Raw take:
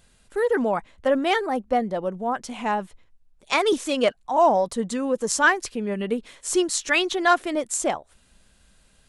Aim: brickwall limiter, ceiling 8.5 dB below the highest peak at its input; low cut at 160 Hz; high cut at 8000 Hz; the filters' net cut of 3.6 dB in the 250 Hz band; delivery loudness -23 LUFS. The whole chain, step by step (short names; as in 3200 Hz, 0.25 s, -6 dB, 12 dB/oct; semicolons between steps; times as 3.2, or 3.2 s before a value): HPF 160 Hz; LPF 8000 Hz; bell 250 Hz -4 dB; gain +3.5 dB; limiter -11 dBFS